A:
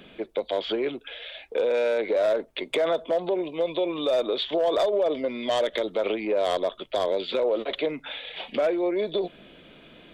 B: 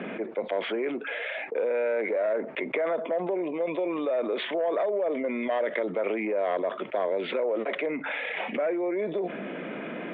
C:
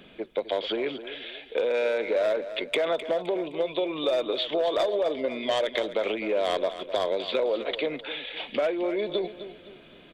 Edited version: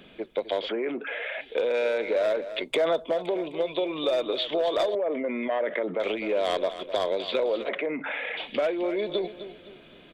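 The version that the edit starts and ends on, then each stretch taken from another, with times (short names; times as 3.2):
C
0.69–1.41 from B
2.63–3.12 from A
4.95–6 from B
7.69–8.37 from B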